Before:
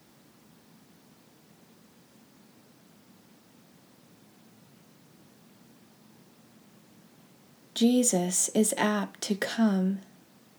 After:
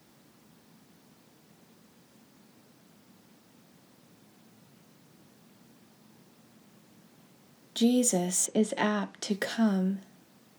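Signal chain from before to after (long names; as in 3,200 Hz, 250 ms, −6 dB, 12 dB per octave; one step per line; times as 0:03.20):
0:08.45–0:09.31: low-pass filter 3,300 Hz → 8,700 Hz 12 dB per octave
level −1.5 dB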